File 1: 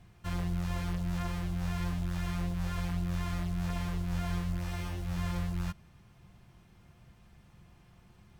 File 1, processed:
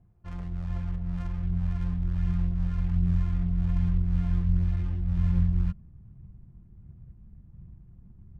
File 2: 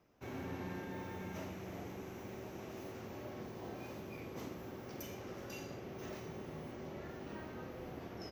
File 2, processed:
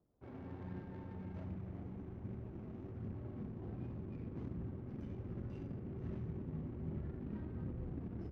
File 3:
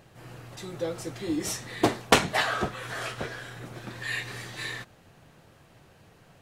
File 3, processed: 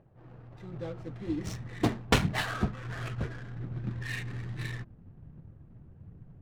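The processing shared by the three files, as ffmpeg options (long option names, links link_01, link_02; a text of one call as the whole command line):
ffmpeg -i in.wav -af "aphaser=in_gain=1:out_gain=1:delay=4.9:decay=0.25:speed=1.3:type=triangular,asubboost=boost=7:cutoff=230,adynamicsmooth=sensitivity=8:basefreq=710,volume=-6dB" out.wav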